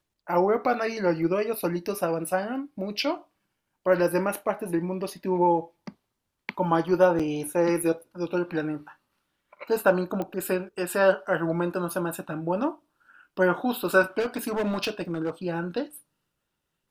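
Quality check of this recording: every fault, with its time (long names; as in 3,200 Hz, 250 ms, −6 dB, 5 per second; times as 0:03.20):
0:07.19–0:07.20: drop-out 5.7 ms
0:10.22: click −19 dBFS
0:14.19–0:15.30: clipping −23 dBFS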